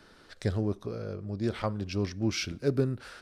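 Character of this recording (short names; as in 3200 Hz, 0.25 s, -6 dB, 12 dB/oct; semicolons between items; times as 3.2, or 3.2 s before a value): noise floor -57 dBFS; spectral tilt -6.0 dB/oct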